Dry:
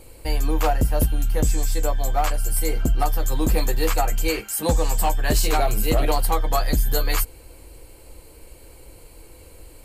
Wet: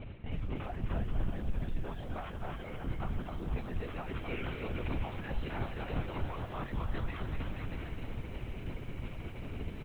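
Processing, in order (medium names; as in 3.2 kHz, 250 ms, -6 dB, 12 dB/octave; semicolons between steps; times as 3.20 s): low-pass 3.1 kHz 12 dB/octave; peaking EQ 650 Hz -7.5 dB 1.2 oct; reverse; compression 12:1, threshold -32 dBFS, peak gain reduction 17 dB; reverse; peak limiter -32.5 dBFS, peak gain reduction 7.5 dB; on a send: bouncing-ball echo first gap 260 ms, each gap 0.8×, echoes 5; on the sum: LPC vocoder at 8 kHz whisper; bit-crushed delay 317 ms, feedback 80%, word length 10-bit, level -13.5 dB; trim +2 dB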